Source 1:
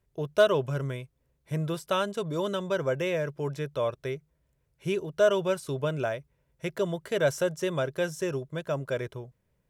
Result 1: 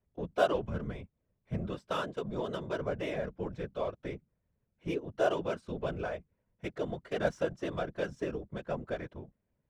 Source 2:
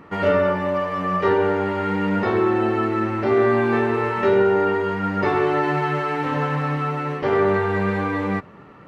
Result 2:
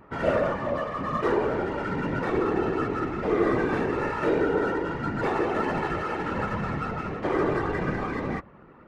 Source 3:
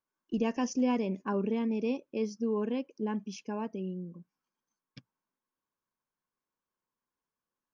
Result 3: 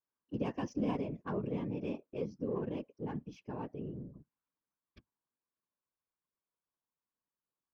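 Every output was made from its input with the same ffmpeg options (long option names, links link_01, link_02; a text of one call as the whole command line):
ffmpeg -i in.wav -af "adynamicsmooth=sensitivity=4.5:basefreq=2800,afftfilt=real='hypot(re,im)*cos(2*PI*random(0))':imag='hypot(re,im)*sin(2*PI*random(1))':win_size=512:overlap=0.75" out.wav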